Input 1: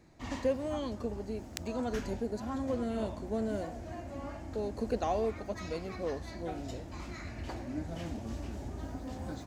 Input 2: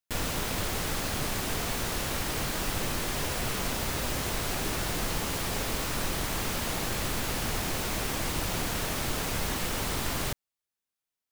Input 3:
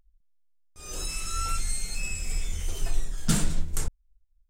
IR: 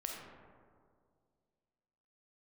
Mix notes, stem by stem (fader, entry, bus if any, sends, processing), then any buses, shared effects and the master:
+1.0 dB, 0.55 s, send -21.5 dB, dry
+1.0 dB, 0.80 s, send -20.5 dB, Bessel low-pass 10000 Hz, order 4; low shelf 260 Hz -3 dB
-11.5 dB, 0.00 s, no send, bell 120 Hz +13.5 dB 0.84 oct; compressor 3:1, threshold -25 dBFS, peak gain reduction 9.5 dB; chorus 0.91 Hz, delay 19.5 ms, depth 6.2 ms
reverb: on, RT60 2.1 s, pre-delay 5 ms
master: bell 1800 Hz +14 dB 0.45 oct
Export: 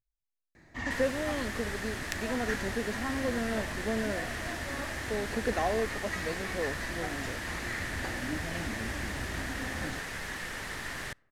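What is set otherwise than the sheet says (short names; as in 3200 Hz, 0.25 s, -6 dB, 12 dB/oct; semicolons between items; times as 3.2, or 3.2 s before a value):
stem 2 +1.0 dB -> -9.0 dB; stem 3 -11.5 dB -> -23.5 dB; reverb return -8.0 dB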